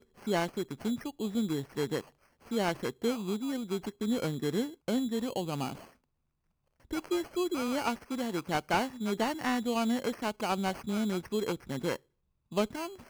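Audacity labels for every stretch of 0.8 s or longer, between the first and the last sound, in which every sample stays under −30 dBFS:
5.720000	6.930000	silence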